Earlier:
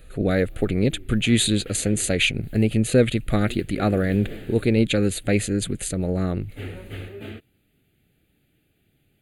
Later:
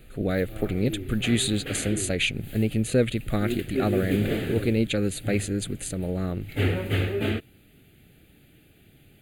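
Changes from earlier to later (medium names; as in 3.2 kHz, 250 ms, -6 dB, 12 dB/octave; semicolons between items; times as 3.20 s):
speech -4.5 dB; background +10.5 dB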